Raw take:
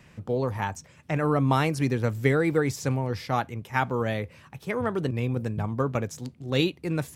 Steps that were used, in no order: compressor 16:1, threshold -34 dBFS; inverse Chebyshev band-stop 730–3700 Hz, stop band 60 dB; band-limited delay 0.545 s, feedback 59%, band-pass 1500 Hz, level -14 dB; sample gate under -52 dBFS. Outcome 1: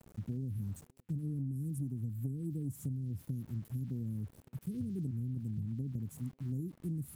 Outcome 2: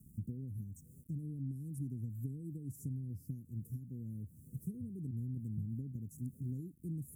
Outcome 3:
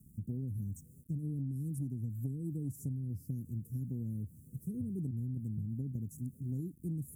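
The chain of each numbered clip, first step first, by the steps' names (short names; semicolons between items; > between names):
inverse Chebyshev band-stop > sample gate > compressor > band-limited delay; band-limited delay > sample gate > compressor > inverse Chebyshev band-stop; band-limited delay > sample gate > inverse Chebyshev band-stop > compressor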